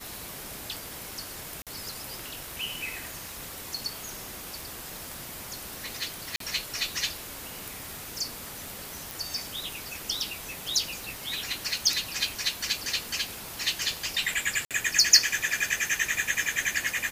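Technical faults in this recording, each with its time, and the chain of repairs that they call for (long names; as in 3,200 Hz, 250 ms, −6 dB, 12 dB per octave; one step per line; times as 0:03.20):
surface crackle 46 per second −38 dBFS
0:01.62–0:01.67: drop-out 47 ms
0:06.36–0:06.40: drop-out 43 ms
0:09.11: click
0:14.65–0:14.71: drop-out 57 ms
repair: click removal
repair the gap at 0:01.62, 47 ms
repair the gap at 0:06.36, 43 ms
repair the gap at 0:14.65, 57 ms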